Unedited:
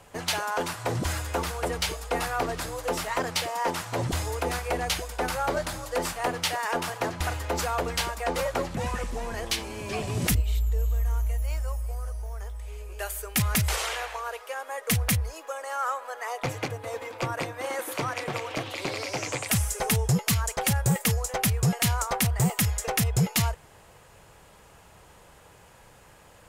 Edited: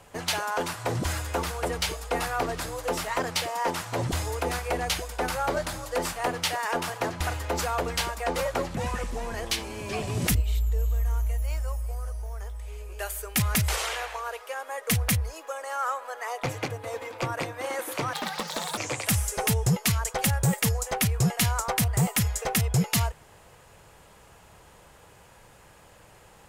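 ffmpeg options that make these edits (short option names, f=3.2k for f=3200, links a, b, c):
-filter_complex "[0:a]asplit=3[a][b][c];[a]atrim=end=18.134[d];[b]atrim=start=18.13:end=19.2,asetpts=PTS-STARTPTS,asetrate=73206,aresample=44100[e];[c]atrim=start=19.196[f];[d][e]acrossfade=d=0.004:c1=hsin:c2=hsin[g];[g][f]acrossfade=d=0.004:c1=hsin:c2=hsin"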